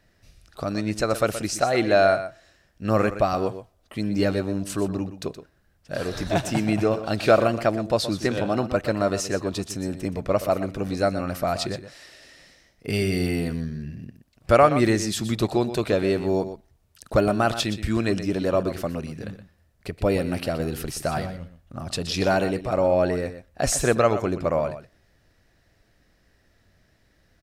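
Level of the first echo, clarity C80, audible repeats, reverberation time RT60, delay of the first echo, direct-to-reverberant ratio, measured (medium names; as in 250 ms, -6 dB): -12.0 dB, no reverb, 1, no reverb, 122 ms, no reverb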